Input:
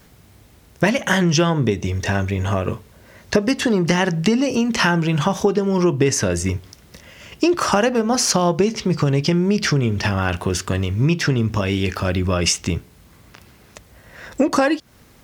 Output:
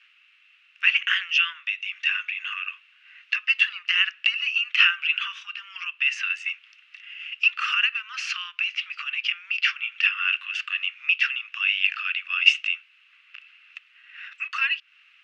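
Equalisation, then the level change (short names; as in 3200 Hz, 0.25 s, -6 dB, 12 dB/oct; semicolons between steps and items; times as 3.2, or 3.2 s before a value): steep high-pass 1200 Hz 72 dB/oct; synth low-pass 2700 Hz, resonance Q 11; -8.0 dB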